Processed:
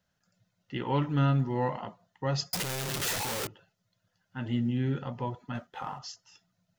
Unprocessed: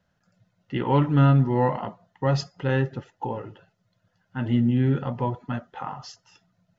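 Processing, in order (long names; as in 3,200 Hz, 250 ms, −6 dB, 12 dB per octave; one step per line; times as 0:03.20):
0:02.53–0:03.47: sign of each sample alone
high-shelf EQ 3,000 Hz +11 dB
0:05.55–0:05.99: leveller curve on the samples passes 1
level −8 dB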